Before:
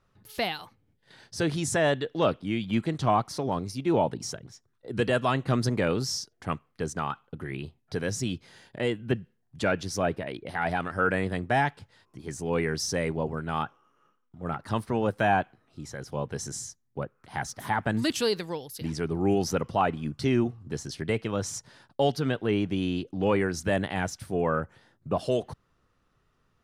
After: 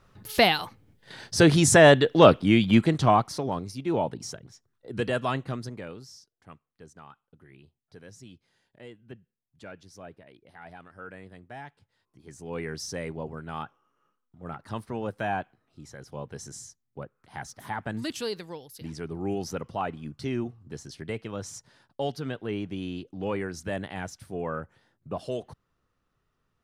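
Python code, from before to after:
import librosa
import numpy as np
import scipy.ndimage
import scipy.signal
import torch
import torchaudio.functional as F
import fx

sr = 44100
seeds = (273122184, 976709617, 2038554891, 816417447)

y = fx.gain(x, sr, db=fx.line((2.59, 9.5), (3.65, -2.5), (5.37, -2.5), (5.58, -9.5), (6.13, -18.0), (11.59, -18.0), (12.69, -6.0)))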